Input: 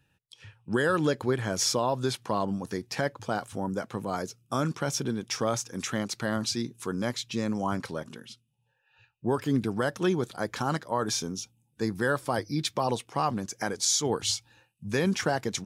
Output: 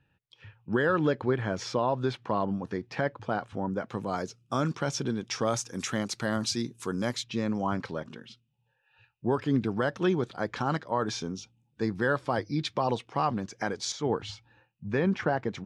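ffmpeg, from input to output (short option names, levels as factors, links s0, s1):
-af "asetnsamples=n=441:p=0,asendcmd='3.89 lowpass f 5800;5.45 lowpass f 10000;7.24 lowpass f 4000;13.92 lowpass f 2100',lowpass=2800"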